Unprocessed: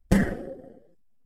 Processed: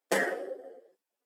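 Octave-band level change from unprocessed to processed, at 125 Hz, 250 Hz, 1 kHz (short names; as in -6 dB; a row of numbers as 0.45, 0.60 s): under -20 dB, -15.5 dB, +2.5 dB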